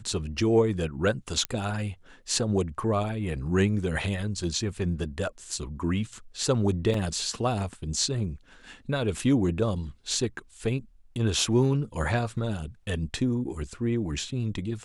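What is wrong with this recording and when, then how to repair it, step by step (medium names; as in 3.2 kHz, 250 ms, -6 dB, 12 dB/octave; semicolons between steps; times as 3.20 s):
1.45 s: pop -12 dBFS
6.94 s: dropout 2.9 ms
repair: de-click; interpolate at 6.94 s, 2.9 ms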